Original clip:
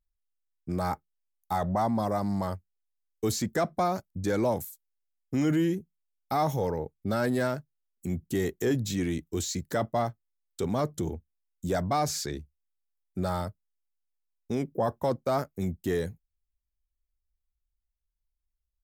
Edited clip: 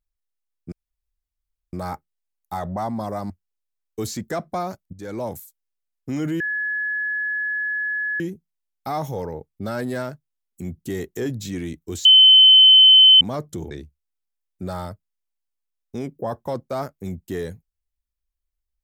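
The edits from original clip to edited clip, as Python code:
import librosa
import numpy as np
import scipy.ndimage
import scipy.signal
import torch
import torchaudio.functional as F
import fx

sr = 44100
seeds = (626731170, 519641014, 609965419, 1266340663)

y = fx.edit(x, sr, fx.insert_room_tone(at_s=0.72, length_s=1.01),
    fx.cut(start_s=2.29, length_s=0.26),
    fx.fade_in_from(start_s=4.18, length_s=0.42, floor_db=-13.0),
    fx.insert_tone(at_s=5.65, length_s=1.8, hz=1700.0, db=-22.0),
    fx.bleep(start_s=9.5, length_s=1.16, hz=3060.0, db=-7.0),
    fx.cut(start_s=11.16, length_s=1.11), tone=tone)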